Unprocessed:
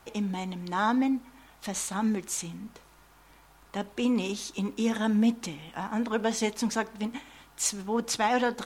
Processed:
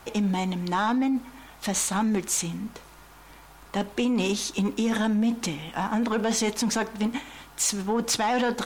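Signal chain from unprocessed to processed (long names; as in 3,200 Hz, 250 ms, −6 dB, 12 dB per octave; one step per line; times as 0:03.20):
in parallel at 0 dB: compressor whose output falls as the input rises −29 dBFS, ratio −0.5
on the sum: soft clipping −15.5 dBFS, distortion −20 dB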